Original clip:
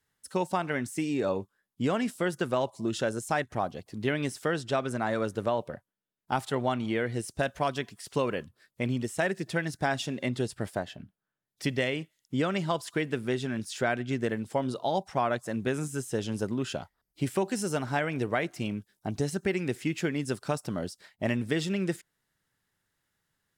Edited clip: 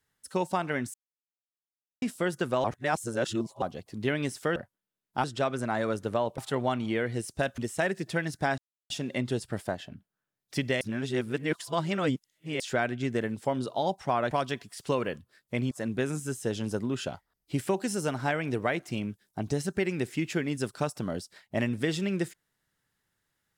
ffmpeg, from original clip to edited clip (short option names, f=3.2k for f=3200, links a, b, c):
-filter_complex "[0:a]asplit=14[a][b][c][d][e][f][g][h][i][j][k][l][m][n];[a]atrim=end=0.94,asetpts=PTS-STARTPTS,afade=t=out:st=0.936:d=0.004:c=hsin[o];[b]atrim=start=0.94:end=2.02,asetpts=PTS-STARTPTS,volume=0[p];[c]atrim=start=2.02:end=2.642,asetpts=PTS-STARTPTS,afade=t=in:d=0.004:c=hsin[q];[d]atrim=start=2.638:end=3.622,asetpts=PTS-STARTPTS,areverse[r];[e]atrim=start=3.618:end=4.562[s];[f]atrim=start=5.698:end=6.382[t];[g]atrim=start=4.558:end=5.702[u];[h]atrim=start=6.378:end=7.582[v];[i]atrim=start=8.978:end=9.98,asetpts=PTS-STARTPTS,afade=t=out:st=0.998:d=0.004:c=hsin,apad=pad_dur=0.32[w];[j]atrim=start=9.98:end=11.892,asetpts=PTS-STARTPTS,afade=t=in:d=0.004:c=hsin[x];[k]atrim=start=11.888:end=13.682,asetpts=PTS-STARTPTS,areverse[y];[l]atrim=start=13.678:end=15.392[z];[m]atrim=start=7.578:end=8.982[aa];[n]atrim=start=15.388[ab];[o][p][q]concat=n=3:v=0:a=1[ac];[ac][r]acrossfade=d=0.004:c1=hsin:c2=hsin[ad];[ad][s]acrossfade=d=0.004:c1=hsin:c2=hsin[ae];[ae][t]acrossfade=d=0.004:c1=hsin:c2=hsin[af];[af][u]acrossfade=d=0.004:c1=hsin:c2=hsin[ag];[ag][v]acrossfade=d=0.004:c1=hsin:c2=hsin[ah];[w][x]concat=n=2:v=0:a=1[ai];[ah][ai]acrossfade=d=0.004:c1=hsin:c2=hsin[aj];[aj][y]acrossfade=d=0.004:c1=hsin:c2=hsin[ak];[ak][z]acrossfade=d=0.004:c1=hsin:c2=hsin[al];[al][aa]acrossfade=d=0.004:c1=hsin:c2=hsin[am];[am][ab]acrossfade=d=0.004:c1=hsin:c2=hsin"